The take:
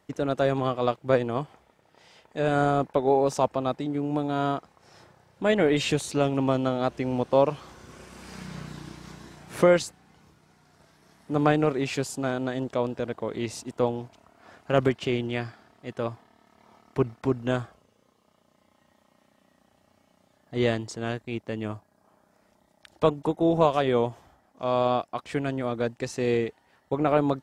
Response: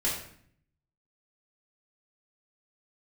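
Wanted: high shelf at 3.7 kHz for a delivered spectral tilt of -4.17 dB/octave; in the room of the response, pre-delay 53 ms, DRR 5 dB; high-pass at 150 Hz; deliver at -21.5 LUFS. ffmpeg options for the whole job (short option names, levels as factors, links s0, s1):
-filter_complex "[0:a]highpass=150,highshelf=f=3700:g=-8.5,asplit=2[s0][s1];[1:a]atrim=start_sample=2205,adelay=53[s2];[s1][s2]afir=irnorm=-1:irlink=0,volume=0.224[s3];[s0][s3]amix=inputs=2:normalize=0,volume=1.68"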